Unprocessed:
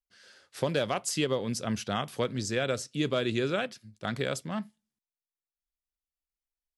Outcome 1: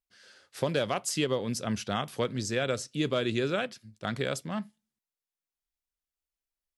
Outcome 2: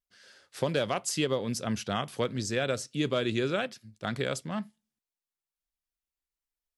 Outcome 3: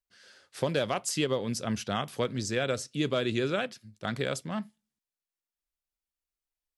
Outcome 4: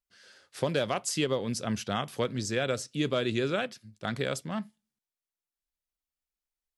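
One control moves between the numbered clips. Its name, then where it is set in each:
vibrato, rate: 2.1 Hz, 0.85 Hz, 15 Hz, 6.2 Hz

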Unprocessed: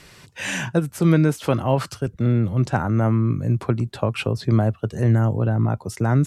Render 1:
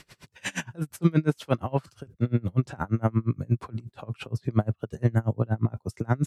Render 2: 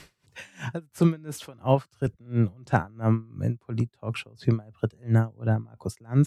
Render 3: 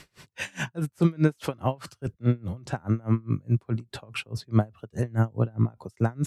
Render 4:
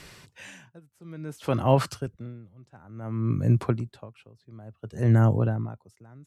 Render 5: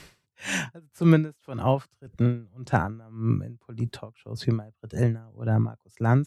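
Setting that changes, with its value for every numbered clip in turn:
logarithmic tremolo, rate: 8.5 Hz, 2.9 Hz, 4.8 Hz, 0.57 Hz, 1.8 Hz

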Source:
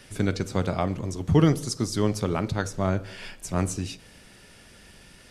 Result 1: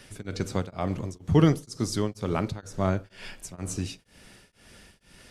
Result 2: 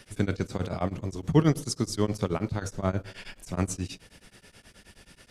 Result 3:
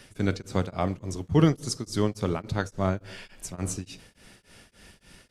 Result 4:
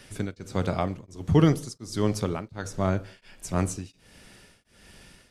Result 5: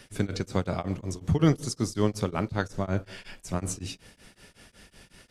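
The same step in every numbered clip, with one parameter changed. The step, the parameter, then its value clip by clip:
tremolo of two beating tones, nulls at: 2.1 Hz, 9.4 Hz, 3.5 Hz, 1.4 Hz, 5.4 Hz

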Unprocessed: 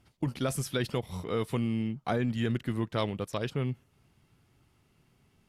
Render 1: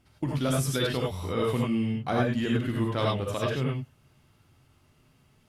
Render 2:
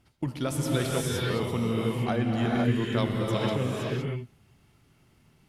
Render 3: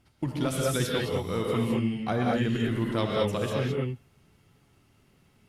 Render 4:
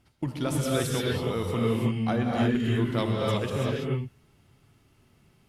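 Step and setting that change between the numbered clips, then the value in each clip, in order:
gated-style reverb, gate: 120 ms, 540 ms, 240 ms, 360 ms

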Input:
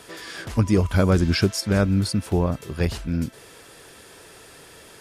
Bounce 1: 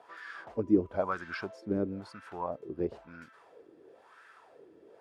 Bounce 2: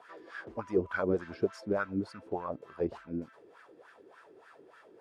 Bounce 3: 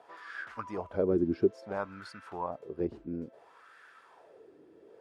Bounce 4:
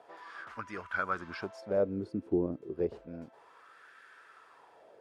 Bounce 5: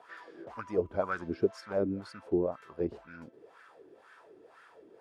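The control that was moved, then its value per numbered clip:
wah-wah, rate: 1 Hz, 3.4 Hz, 0.59 Hz, 0.31 Hz, 2 Hz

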